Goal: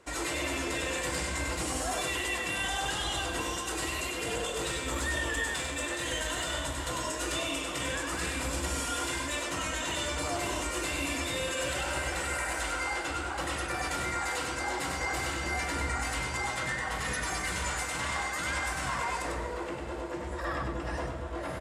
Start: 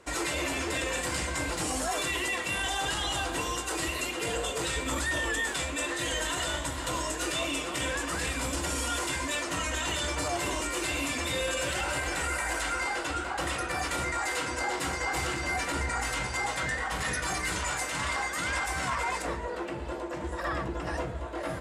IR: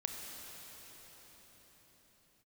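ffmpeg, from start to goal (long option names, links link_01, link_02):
-filter_complex "[0:a]aecho=1:1:98:0.596,asplit=2[link_01][link_02];[1:a]atrim=start_sample=2205[link_03];[link_02][link_03]afir=irnorm=-1:irlink=0,volume=-6.5dB[link_04];[link_01][link_04]amix=inputs=2:normalize=0,asettb=1/sr,asplit=3[link_05][link_06][link_07];[link_05]atrim=end=4.684[link_08];[link_06]atrim=start=4.68:end=6.53,asetpts=PTS-STARTPTS,afade=type=in:duration=0.004:curve=qsin,afade=type=out:start_time=1.846:duration=0.004:curve=qsin,aeval=exprs='0.211*(cos(1*acos(clip(val(0)/0.211,-1,1)))-cos(1*PI/2))+0.00422*(cos(7*acos(clip(val(0)/0.211,-1,1)))-cos(7*PI/2))':channel_layout=same[link_09];[link_07]atrim=start=6.526[link_10];[link_08][link_09]acrossfade=duration=0.004:curve1=hsin:curve2=qsin[link_11];[link_11][link_10]acrossfade=duration=0.004:curve1=qsin:curve2=hsin,volume=-6dB"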